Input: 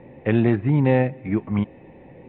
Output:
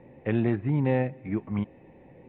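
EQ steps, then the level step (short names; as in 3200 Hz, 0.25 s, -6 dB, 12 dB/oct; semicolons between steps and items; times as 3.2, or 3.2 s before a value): air absorption 68 m; -6.5 dB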